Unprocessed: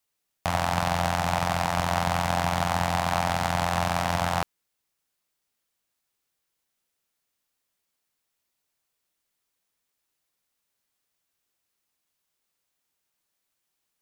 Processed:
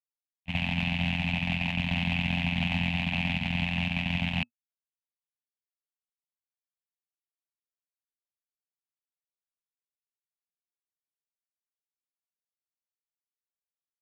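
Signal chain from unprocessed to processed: gate -23 dBFS, range -51 dB; EQ curve 110 Hz 0 dB, 240 Hz +8 dB, 400 Hz -23 dB, 600 Hz -13 dB, 870 Hz -12 dB, 1300 Hz -20 dB, 2600 Hz +15 dB, 5300 Hz -13 dB, 10000 Hz -20 dB; limiter -26.5 dBFS, peak gain reduction 11.5 dB; gain +8.5 dB

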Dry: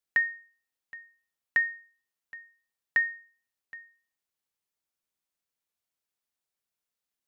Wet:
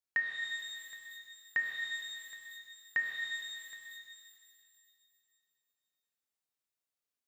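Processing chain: HPF 44 Hz; shimmer reverb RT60 2.5 s, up +12 st, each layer -8 dB, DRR 0.5 dB; gain -7 dB

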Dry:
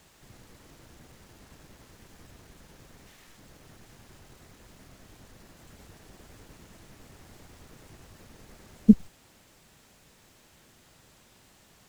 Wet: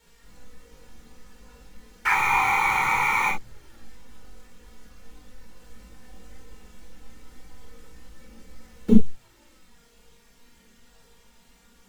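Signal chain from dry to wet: painted sound noise, 2.05–3.29, 760–2500 Hz -20 dBFS; chorus voices 6, 0.22 Hz, delay 19 ms, depth 2.3 ms; in parallel at -3.5 dB: Schmitt trigger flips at -33.5 dBFS; on the sum: envelope flanger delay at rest 4.4 ms, full sweep at -20.5 dBFS; reverb, pre-delay 17 ms, DRR 1 dB; gain +1.5 dB

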